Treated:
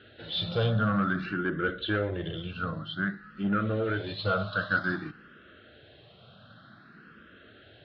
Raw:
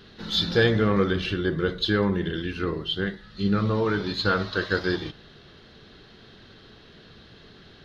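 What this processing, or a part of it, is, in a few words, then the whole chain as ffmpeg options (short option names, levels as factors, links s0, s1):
barber-pole phaser into a guitar amplifier: -filter_complex "[0:a]asplit=2[s0][s1];[s1]afreqshift=0.53[s2];[s0][s2]amix=inputs=2:normalize=1,asoftclip=type=tanh:threshold=0.106,highpass=100,equalizer=f=110:t=q:w=4:g=4,equalizer=f=410:t=q:w=4:g=-7,equalizer=f=610:t=q:w=4:g=7,equalizer=f=930:t=q:w=4:g=-9,equalizer=f=1400:t=q:w=4:g=10,equalizer=f=2100:t=q:w=4:g=-5,lowpass=f=3400:w=0.5412,lowpass=f=3400:w=1.3066"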